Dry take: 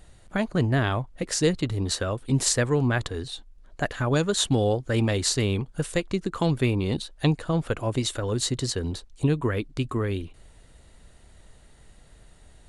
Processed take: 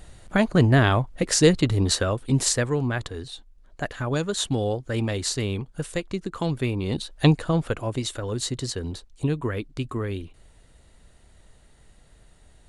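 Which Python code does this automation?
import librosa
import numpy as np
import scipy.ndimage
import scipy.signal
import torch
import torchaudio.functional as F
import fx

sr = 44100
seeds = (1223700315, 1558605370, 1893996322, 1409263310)

y = fx.gain(x, sr, db=fx.line((1.83, 5.5), (2.88, -2.5), (6.76, -2.5), (7.27, 5.0), (7.95, -2.0)))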